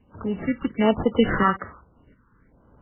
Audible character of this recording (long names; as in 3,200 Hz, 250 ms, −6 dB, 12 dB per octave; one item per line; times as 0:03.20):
aliases and images of a low sample rate 2,500 Hz, jitter 0%
tremolo saw up 1.4 Hz, depth 55%
phaser sweep stages 6, 1.2 Hz, lowest notch 610–2,500 Hz
MP3